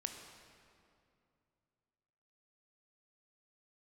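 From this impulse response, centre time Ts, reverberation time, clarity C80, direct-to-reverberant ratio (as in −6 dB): 51 ms, 2.5 s, 6.0 dB, 4.0 dB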